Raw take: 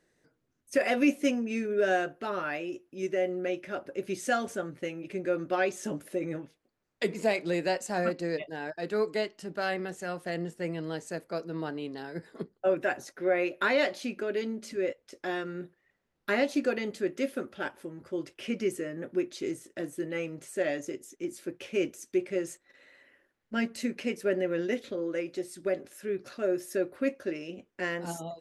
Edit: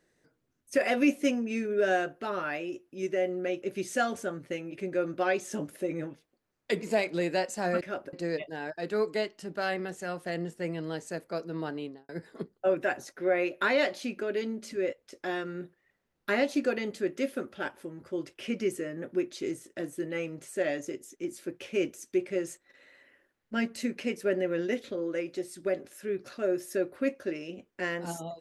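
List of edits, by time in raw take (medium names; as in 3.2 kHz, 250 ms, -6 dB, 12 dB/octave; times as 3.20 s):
3.62–3.94 s: move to 8.13 s
11.79–12.09 s: studio fade out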